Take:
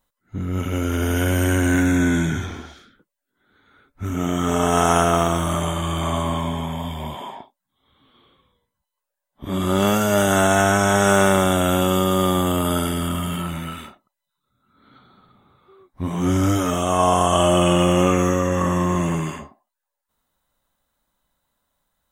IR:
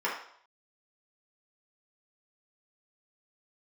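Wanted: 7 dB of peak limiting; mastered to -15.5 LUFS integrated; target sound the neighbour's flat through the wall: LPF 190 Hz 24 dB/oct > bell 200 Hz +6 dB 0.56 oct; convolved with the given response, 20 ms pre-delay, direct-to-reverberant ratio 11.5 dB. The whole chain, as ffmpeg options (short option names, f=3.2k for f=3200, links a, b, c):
-filter_complex "[0:a]alimiter=limit=-8.5dB:level=0:latency=1,asplit=2[a][b];[1:a]atrim=start_sample=2205,adelay=20[c];[b][c]afir=irnorm=-1:irlink=0,volume=-21.5dB[d];[a][d]amix=inputs=2:normalize=0,lowpass=f=190:w=0.5412,lowpass=f=190:w=1.3066,equalizer=f=200:t=o:w=0.56:g=6,volume=9.5dB"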